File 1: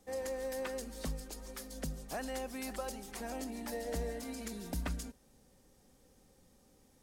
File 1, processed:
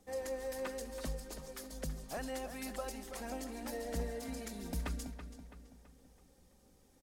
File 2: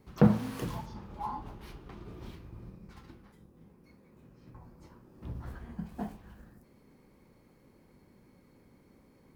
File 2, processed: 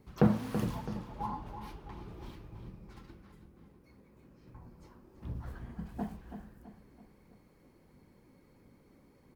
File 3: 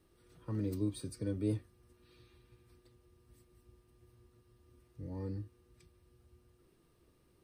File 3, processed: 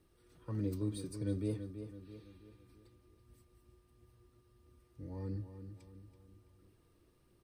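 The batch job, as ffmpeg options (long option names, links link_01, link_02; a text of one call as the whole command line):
ffmpeg -i in.wav -filter_complex "[0:a]aphaser=in_gain=1:out_gain=1:delay=3.8:decay=0.26:speed=1.5:type=triangular,asplit=2[link_01][link_02];[link_02]adelay=330,lowpass=frequency=4300:poles=1,volume=-9.5dB,asplit=2[link_03][link_04];[link_04]adelay=330,lowpass=frequency=4300:poles=1,volume=0.47,asplit=2[link_05][link_06];[link_06]adelay=330,lowpass=frequency=4300:poles=1,volume=0.47,asplit=2[link_07][link_08];[link_08]adelay=330,lowpass=frequency=4300:poles=1,volume=0.47,asplit=2[link_09][link_10];[link_10]adelay=330,lowpass=frequency=4300:poles=1,volume=0.47[link_11];[link_03][link_05][link_07][link_09][link_11]amix=inputs=5:normalize=0[link_12];[link_01][link_12]amix=inputs=2:normalize=0,volume=-2dB" out.wav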